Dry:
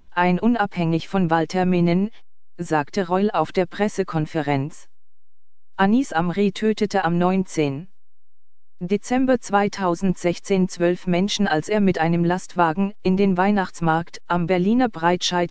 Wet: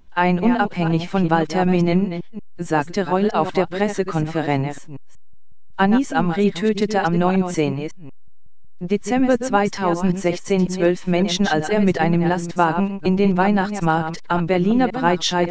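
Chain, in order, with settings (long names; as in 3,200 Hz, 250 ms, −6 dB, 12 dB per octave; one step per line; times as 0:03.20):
delay that plays each chunk backwards 184 ms, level −9 dB
level +1 dB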